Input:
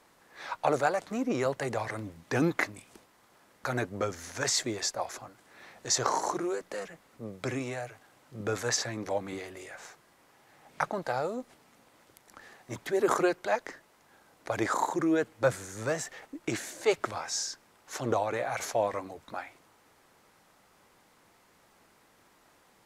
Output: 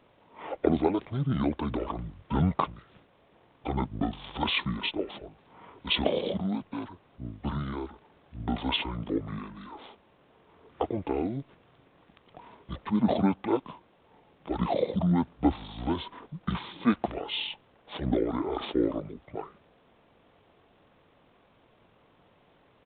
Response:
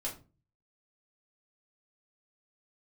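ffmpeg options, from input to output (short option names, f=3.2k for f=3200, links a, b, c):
-af "asetrate=24046,aresample=44100,atempo=1.83401,aresample=8000,aresample=44100,volume=2dB"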